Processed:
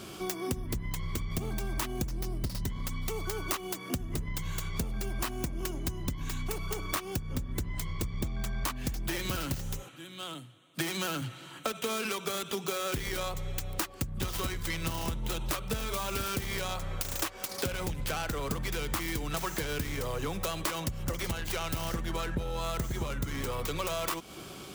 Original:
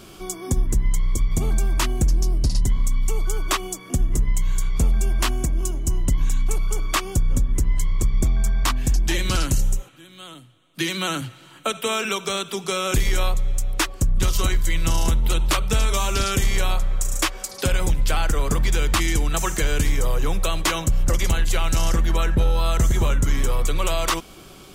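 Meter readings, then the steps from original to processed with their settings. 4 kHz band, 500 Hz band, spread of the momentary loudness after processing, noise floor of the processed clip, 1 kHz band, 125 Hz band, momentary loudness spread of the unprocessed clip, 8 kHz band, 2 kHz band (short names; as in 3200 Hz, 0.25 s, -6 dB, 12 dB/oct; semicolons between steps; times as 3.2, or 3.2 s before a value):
-9.5 dB, -7.5 dB, 4 LU, -47 dBFS, -9.0 dB, -12.0 dB, 5 LU, -11.0 dB, -9.0 dB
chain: tracing distortion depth 0.41 ms; HPF 74 Hz 12 dB/oct; compressor, threshold -30 dBFS, peak gain reduction 13 dB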